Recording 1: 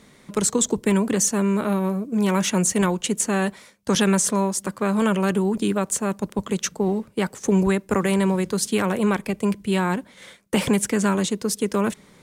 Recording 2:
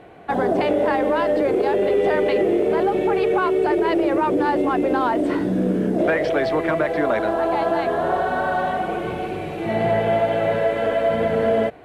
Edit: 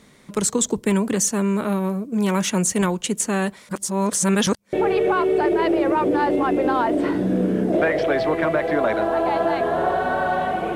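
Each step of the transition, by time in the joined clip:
recording 1
3.69–4.73 reverse
4.73 switch to recording 2 from 2.99 s

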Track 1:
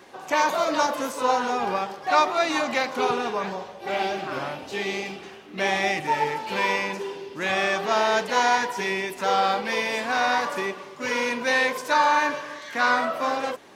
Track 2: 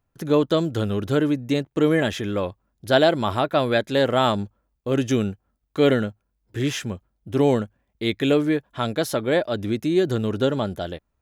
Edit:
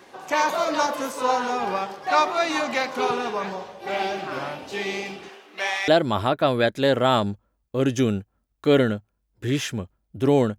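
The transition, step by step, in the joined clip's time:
track 1
5.28–5.88 HPF 280 Hz -> 1300 Hz
5.88 switch to track 2 from 3 s

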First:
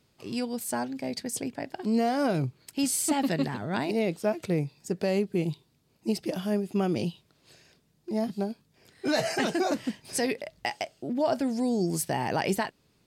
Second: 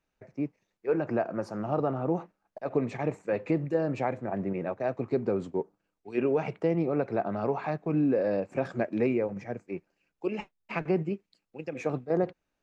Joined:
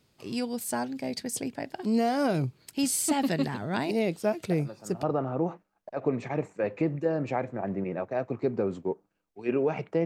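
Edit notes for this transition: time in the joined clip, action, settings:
first
4.51 add second from 1.2 s 0.52 s -11 dB
5.03 switch to second from 1.72 s

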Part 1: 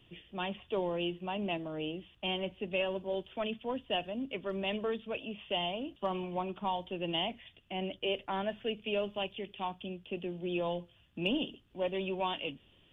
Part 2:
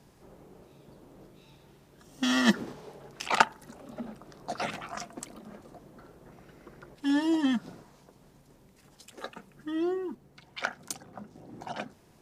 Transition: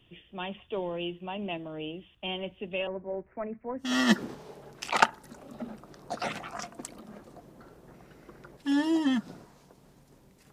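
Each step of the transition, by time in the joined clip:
part 1
2.87–3.97 steep low-pass 2200 Hz 96 dB/oct
3.87 switch to part 2 from 2.25 s, crossfade 0.20 s

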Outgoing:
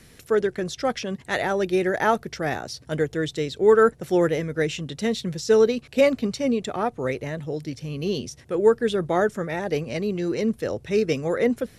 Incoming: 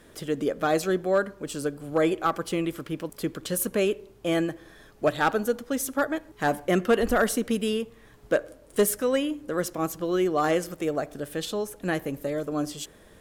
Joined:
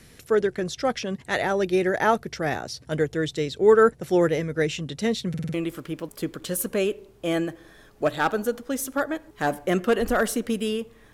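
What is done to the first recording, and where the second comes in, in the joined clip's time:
outgoing
5.29 stutter in place 0.05 s, 5 plays
5.54 switch to incoming from 2.55 s

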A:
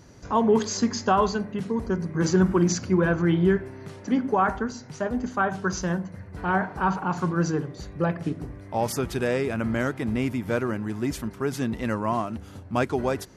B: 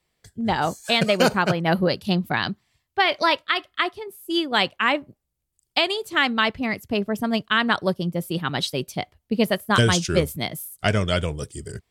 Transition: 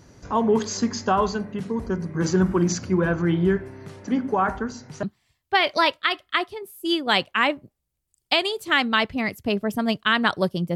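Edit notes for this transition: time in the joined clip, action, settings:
A
5.03 switch to B from 2.48 s

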